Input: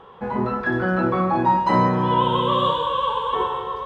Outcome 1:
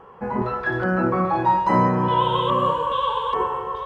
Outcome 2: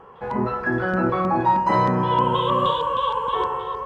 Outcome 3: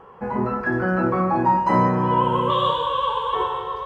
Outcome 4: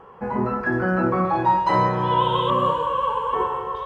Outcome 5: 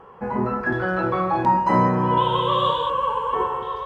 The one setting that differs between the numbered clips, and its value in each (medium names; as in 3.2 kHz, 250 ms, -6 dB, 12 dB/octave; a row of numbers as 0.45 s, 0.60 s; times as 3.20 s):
LFO notch, rate: 1.2 Hz, 3.2 Hz, 0.2 Hz, 0.4 Hz, 0.69 Hz